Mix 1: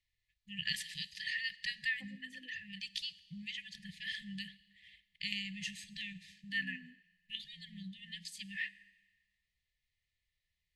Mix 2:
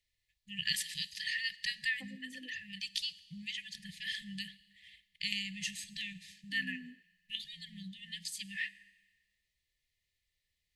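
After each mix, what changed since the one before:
first voice: add treble shelf 5.2 kHz +11 dB; second voice +7.0 dB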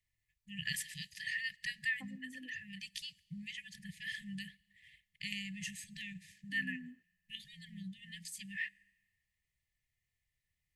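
first voice: send -9.0 dB; master: add ten-band graphic EQ 125 Hz +8 dB, 500 Hz -9 dB, 1 kHz +10 dB, 4 kHz -10 dB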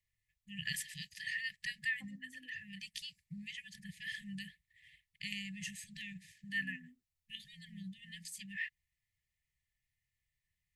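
second voice -9.0 dB; reverb: off

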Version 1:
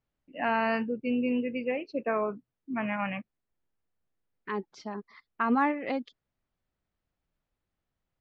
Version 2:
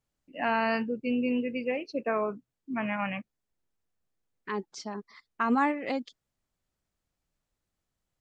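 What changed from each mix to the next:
master: remove low-pass 3.4 kHz 12 dB/octave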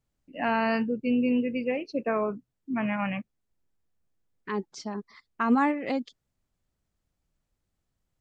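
master: add bass shelf 300 Hz +6.5 dB

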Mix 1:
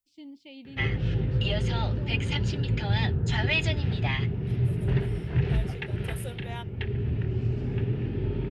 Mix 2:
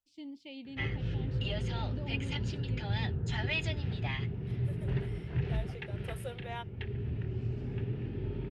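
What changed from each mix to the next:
second voice: add treble shelf 4.6 kHz -11.5 dB; background -7.5 dB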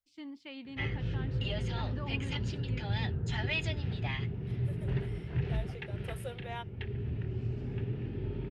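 first voice: remove Butterworth band-stop 1.4 kHz, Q 0.83

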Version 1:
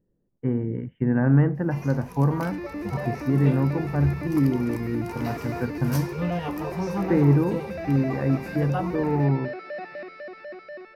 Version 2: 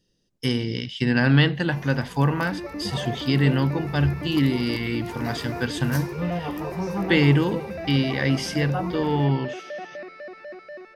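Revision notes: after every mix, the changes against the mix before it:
speech: remove Gaussian low-pass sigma 6.8 samples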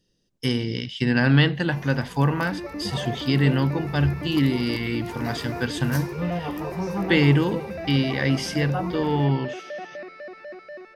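no change

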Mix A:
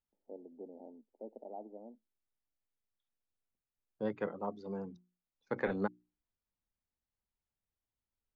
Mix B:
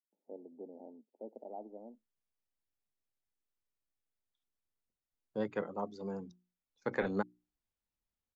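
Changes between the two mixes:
second voice: entry +1.35 s; master: remove distance through air 150 m

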